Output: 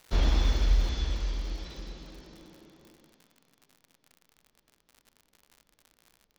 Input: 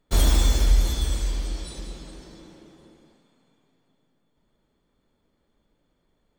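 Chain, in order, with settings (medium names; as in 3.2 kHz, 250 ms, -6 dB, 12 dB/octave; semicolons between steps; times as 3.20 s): CVSD coder 32 kbps; crackle 430 per s -37 dBFS, from 0.89 s 70 per s; trim -5 dB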